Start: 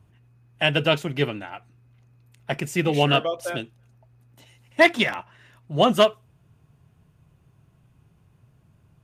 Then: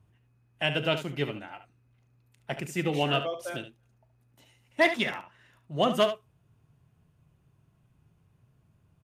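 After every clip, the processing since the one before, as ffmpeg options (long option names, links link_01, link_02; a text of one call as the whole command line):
ffmpeg -i in.wav -af "aecho=1:1:38|72:0.15|0.282,volume=-7dB" out.wav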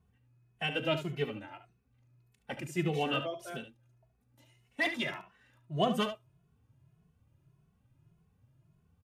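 ffmpeg -i in.wav -filter_complex "[0:a]lowshelf=frequency=360:gain=3.5,asplit=2[link_01][link_02];[link_02]adelay=2.3,afreqshift=1.7[link_03];[link_01][link_03]amix=inputs=2:normalize=1,volume=-2.5dB" out.wav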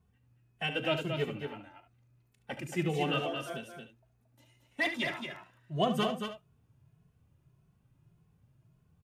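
ffmpeg -i in.wav -af "aecho=1:1:226:0.473" out.wav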